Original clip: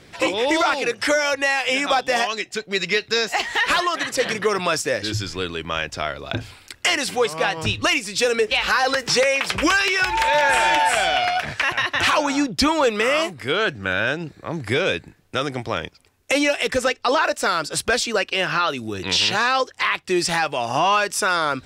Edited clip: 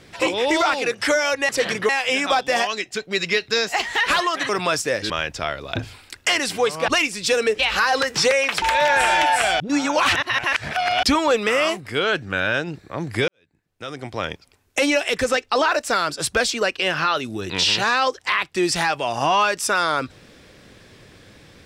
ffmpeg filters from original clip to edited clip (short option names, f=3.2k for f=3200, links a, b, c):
-filter_complex "[0:a]asplit=10[a][b][c][d][e][f][g][h][i][j];[a]atrim=end=1.492[k];[b]atrim=start=4.088:end=4.492[l];[c]atrim=start=1.488:end=4.092[m];[d]atrim=start=4.488:end=5.102[n];[e]atrim=start=5.678:end=7.462[o];[f]atrim=start=7.798:end=9.542[p];[g]atrim=start=10.148:end=11.132[q];[h]atrim=start=11.128:end=12.562,asetpts=PTS-STARTPTS,areverse[r];[i]atrim=start=12.558:end=14.81,asetpts=PTS-STARTPTS,afade=t=out:st=2.248:d=0.004:c=hsin[s];[j]atrim=start=14.81,asetpts=PTS-STARTPTS,afade=t=in:d=1.01:c=qua[t];[k][l]acrossfade=d=0.004:c1=hsin:c2=hsin[u];[u][m]acrossfade=d=0.004:c1=hsin:c2=hsin[v];[v][n]acrossfade=d=0.004:c1=hsin:c2=hsin[w];[w][o]acrossfade=d=0.004:c1=hsin:c2=hsin[x];[x][p]acrossfade=d=0.004:c1=hsin:c2=hsin[y];[y][q]acrossfade=d=0.004:c1=hsin:c2=hsin[z];[z][r]acrossfade=d=0.004:c1=hsin:c2=hsin[aa];[s][t]concat=n=2:v=0:a=1[ab];[aa][ab]acrossfade=d=0.004:c1=hsin:c2=hsin"